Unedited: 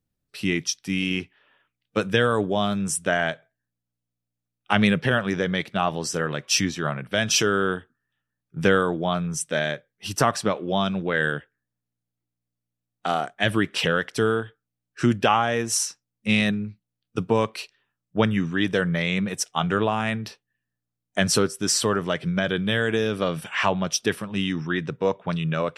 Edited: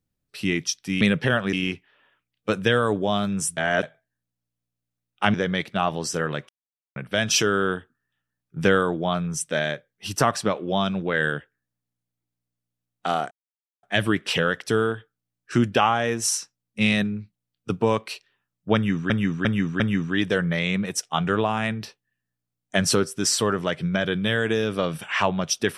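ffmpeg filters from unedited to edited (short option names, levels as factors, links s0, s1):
-filter_complex "[0:a]asplit=12[s0][s1][s2][s3][s4][s5][s6][s7][s8][s9][s10][s11];[s0]atrim=end=1.012[s12];[s1]atrim=start=4.818:end=5.342[s13];[s2]atrim=start=1.008:end=3.052[s14];[s3]atrim=start=3.048:end=3.312,asetpts=PTS-STARTPTS,areverse[s15];[s4]atrim=start=3.308:end=4.822[s16];[s5]atrim=start=5.338:end=6.49,asetpts=PTS-STARTPTS,afade=t=out:st=1.148:d=0.004:c=hsin[s17];[s6]atrim=start=6.49:end=6.96,asetpts=PTS-STARTPTS,volume=0[s18];[s7]atrim=start=6.96:end=13.31,asetpts=PTS-STARTPTS,afade=t=in:d=0.004:c=hsin,afade=t=out:st=6.346:d=0.004:c=hsin,apad=pad_dur=0.52[s19];[s8]atrim=start=13.31:end=18.582,asetpts=PTS-STARTPTS,afade=t=in:d=0.004:c=hsin[s20];[s9]atrim=start=18.228:end=18.582[s21];[s10]atrim=start=18.228:end=18.582[s22];[s11]atrim=start=18.228[s23];[s12][s13]acrossfade=d=0.004:c1=hsin:c2=hsin[s24];[s24][s14]acrossfade=d=0.004:c1=hsin:c2=hsin[s25];[s25][s15]acrossfade=d=0.004:c1=hsin:c2=hsin[s26];[s26][s16]acrossfade=d=0.004:c1=hsin:c2=hsin[s27];[s17][s18][s19][s20]concat=n=4:v=0:a=1[s28];[s27][s28]acrossfade=d=0.004:c1=hsin:c2=hsin[s29];[s29][s21]acrossfade=d=0.004:c1=hsin:c2=hsin[s30];[s30][s22]acrossfade=d=0.004:c1=hsin:c2=hsin[s31];[s31][s23]acrossfade=d=0.004:c1=hsin:c2=hsin"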